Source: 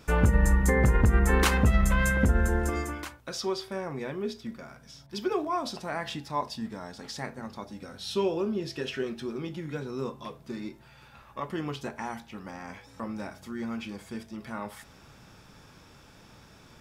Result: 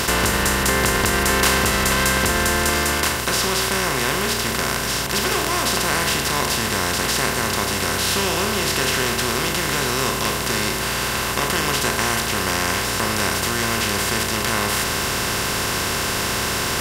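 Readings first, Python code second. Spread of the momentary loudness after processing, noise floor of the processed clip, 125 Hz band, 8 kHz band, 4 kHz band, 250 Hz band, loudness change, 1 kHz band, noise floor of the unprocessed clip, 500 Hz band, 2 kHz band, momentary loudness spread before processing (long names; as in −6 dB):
3 LU, −24 dBFS, +3.0 dB, +21.0 dB, +20.0 dB, +6.0 dB, +10.0 dB, +13.0 dB, −54 dBFS, +8.5 dB, +14.5 dB, 18 LU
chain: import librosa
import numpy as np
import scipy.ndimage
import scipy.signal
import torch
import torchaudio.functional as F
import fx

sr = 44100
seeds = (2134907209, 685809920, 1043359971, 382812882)

y = fx.bin_compress(x, sr, power=0.2)
y = fx.tilt_eq(y, sr, slope=2.5)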